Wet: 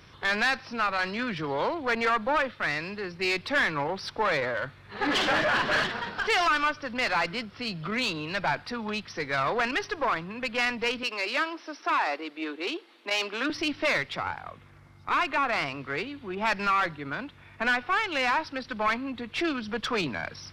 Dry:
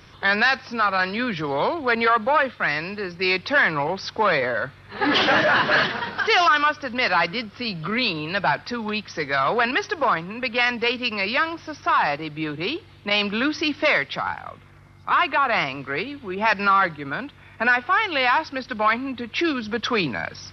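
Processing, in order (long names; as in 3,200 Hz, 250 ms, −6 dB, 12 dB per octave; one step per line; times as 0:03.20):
one-sided soft clipper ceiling −21.5 dBFS
0:11.03–0:13.50: Butterworth high-pass 270 Hz 36 dB per octave
level −4 dB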